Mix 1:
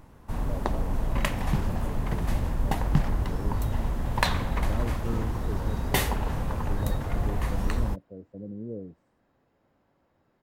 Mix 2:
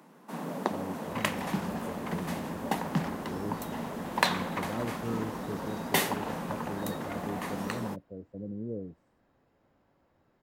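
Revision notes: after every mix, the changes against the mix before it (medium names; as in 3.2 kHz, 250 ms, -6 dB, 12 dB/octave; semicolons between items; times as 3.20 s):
first sound: add steep high-pass 160 Hz 72 dB/octave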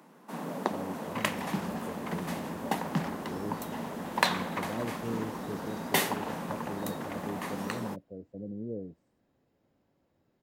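second sound: add peaking EQ 1.2 kHz -9 dB 2.1 oct; master: add bass shelf 65 Hz -10 dB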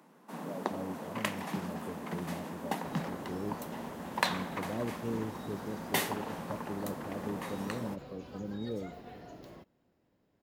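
first sound -4.0 dB; second sound: entry +1.75 s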